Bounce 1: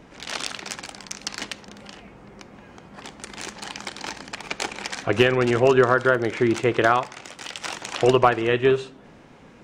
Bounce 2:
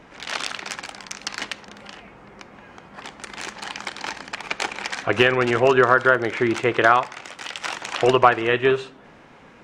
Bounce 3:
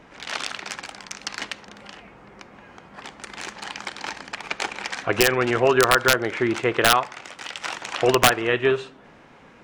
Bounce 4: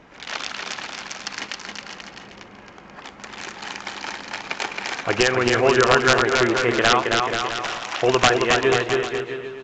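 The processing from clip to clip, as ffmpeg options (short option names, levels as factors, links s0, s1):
-af "equalizer=f=1500:w=0.4:g=7.5,volume=0.708"
-af "aeval=exprs='(mod(1.58*val(0)+1,2)-1)/1.58':c=same,volume=0.841"
-af "aecho=1:1:270|486|658.8|797|907.6:0.631|0.398|0.251|0.158|0.1" -ar 16000 -c:a pcm_mulaw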